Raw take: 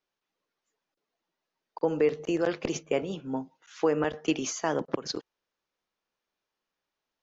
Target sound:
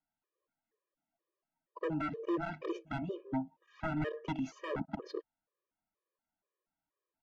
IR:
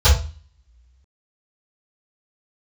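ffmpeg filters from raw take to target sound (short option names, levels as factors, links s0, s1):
-af "aeval=exprs='0.0596*(abs(mod(val(0)/0.0596+3,4)-2)-1)':c=same,adynamicsmooth=sensitivity=0.5:basefreq=1800,afftfilt=real='re*gt(sin(2*PI*2.1*pts/sr)*(1-2*mod(floor(b*sr/1024/320),2)),0)':imag='im*gt(sin(2*PI*2.1*pts/sr)*(1-2*mod(floor(b*sr/1024/320),2)),0)':win_size=1024:overlap=0.75"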